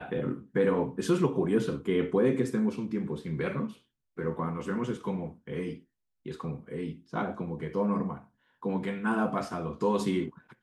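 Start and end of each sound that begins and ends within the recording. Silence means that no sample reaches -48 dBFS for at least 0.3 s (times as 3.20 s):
4.17–5.80 s
6.26–8.24 s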